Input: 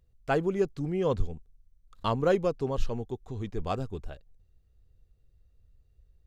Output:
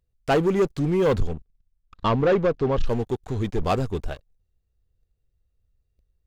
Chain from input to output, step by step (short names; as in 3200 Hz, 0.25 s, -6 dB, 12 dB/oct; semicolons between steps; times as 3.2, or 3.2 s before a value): low shelf 310 Hz -2.5 dB; sample leveller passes 3; 1.33–2.86 air absorption 150 m